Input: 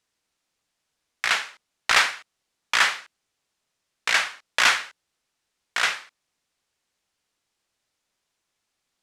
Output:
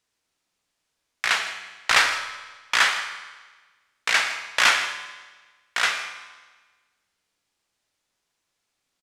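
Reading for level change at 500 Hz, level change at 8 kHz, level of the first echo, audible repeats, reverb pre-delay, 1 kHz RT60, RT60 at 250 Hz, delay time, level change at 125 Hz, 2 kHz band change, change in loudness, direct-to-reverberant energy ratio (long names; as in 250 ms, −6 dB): +1.0 dB, +1.0 dB, −18.0 dB, 2, 14 ms, 1.4 s, 1.3 s, 119 ms, can't be measured, +1.0 dB, 0.0 dB, 6.0 dB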